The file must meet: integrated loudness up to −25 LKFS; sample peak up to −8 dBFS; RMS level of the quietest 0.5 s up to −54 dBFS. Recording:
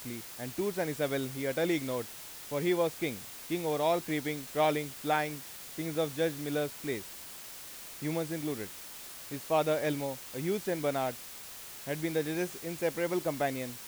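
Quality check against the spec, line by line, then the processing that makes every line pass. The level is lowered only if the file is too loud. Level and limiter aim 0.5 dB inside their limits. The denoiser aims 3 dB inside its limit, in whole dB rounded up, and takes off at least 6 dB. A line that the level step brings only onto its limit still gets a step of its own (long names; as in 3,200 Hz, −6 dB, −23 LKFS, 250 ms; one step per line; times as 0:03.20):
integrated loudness −33.5 LKFS: in spec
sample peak −15.0 dBFS: in spec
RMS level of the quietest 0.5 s −46 dBFS: out of spec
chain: broadband denoise 11 dB, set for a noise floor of −46 dBFS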